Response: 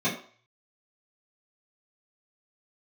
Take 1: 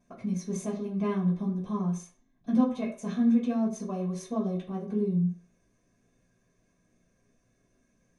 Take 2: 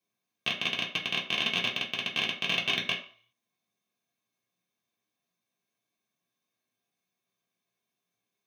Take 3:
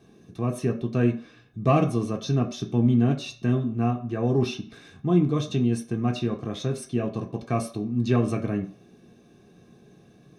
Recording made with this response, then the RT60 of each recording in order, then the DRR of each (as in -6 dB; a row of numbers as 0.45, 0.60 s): 1; 0.45, 0.45, 0.45 s; -12.5, -4.5, 2.0 dB